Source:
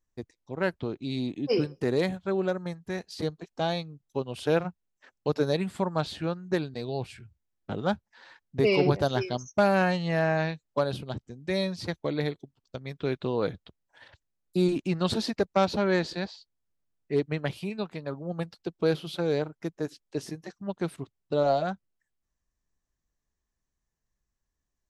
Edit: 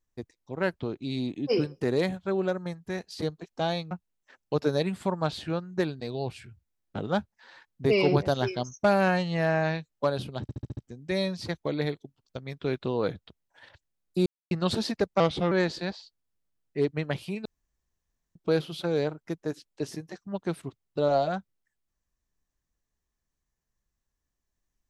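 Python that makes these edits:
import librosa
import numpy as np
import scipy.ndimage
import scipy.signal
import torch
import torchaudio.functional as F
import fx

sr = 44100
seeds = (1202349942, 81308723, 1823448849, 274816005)

y = fx.edit(x, sr, fx.cut(start_s=3.91, length_s=0.74),
    fx.stutter(start_s=11.16, slice_s=0.07, count=6),
    fx.silence(start_s=14.65, length_s=0.25),
    fx.speed_span(start_s=15.59, length_s=0.27, speed=0.86),
    fx.room_tone_fill(start_s=17.8, length_s=0.9), tone=tone)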